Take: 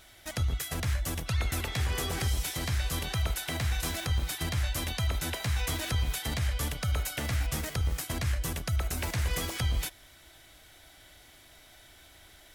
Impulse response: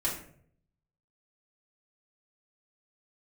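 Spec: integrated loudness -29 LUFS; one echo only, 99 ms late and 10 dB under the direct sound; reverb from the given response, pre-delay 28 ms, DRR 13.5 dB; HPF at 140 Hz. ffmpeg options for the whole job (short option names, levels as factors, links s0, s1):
-filter_complex "[0:a]highpass=140,aecho=1:1:99:0.316,asplit=2[s0][s1];[1:a]atrim=start_sample=2205,adelay=28[s2];[s1][s2]afir=irnorm=-1:irlink=0,volume=0.1[s3];[s0][s3]amix=inputs=2:normalize=0,volume=1.78"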